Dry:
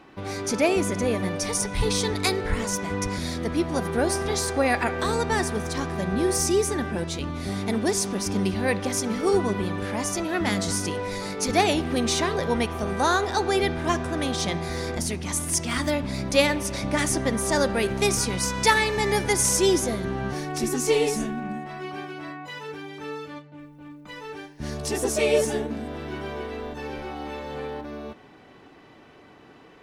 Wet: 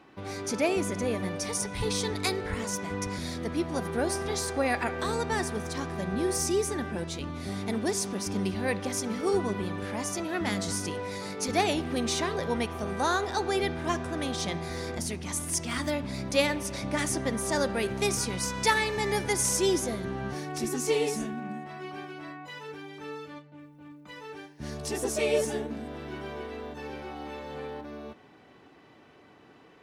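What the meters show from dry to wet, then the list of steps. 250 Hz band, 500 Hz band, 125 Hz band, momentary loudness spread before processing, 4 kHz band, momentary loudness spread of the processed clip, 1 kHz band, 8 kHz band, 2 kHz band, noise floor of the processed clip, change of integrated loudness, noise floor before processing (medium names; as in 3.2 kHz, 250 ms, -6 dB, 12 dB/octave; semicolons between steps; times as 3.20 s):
-5.0 dB, -5.0 dB, -5.5 dB, 13 LU, -5.0 dB, 14 LU, -5.0 dB, -5.0 dB, -5.0 dB, -55 dBFS, -5.0 dB, -50 dBFS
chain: high-pass 59 Hz; trim -5 dB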